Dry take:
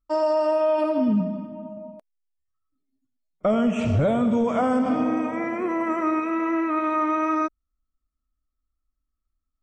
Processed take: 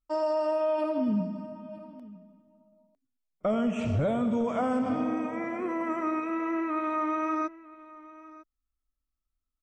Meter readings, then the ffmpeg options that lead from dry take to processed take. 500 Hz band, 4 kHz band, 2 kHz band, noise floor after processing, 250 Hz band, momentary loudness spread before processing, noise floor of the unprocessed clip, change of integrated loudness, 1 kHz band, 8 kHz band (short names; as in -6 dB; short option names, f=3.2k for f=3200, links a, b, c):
-6.0 dB, -6.0 dB, -6.0 dB, -85 dBFS, -6.0 dB, 8 LU, -80 dBFS, -6.0 dB, -6.0 dB, n/a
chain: -af "aecho=1:1:953:0.106,volume=-6dB"